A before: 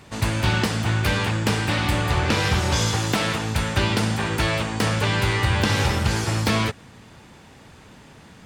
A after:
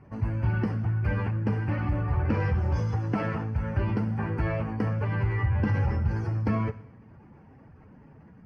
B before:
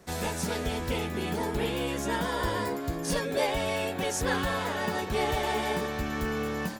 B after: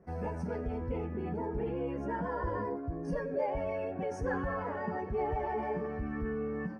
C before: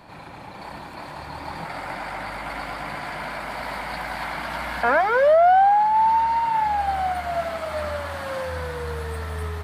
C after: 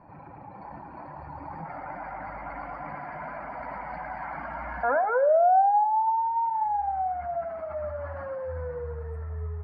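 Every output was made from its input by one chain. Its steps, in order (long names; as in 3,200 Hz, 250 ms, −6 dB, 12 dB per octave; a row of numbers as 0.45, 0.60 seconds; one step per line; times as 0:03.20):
expanding power law on the bin magnitudes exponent 1.6
moving average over 12 samples
coupled-rooms reverb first 0.81 s, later 2.2 s, from −24 dB, DRR 12.5 dB
level −4.5 dB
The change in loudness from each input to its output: −6.0, −5.5, −5.0 LU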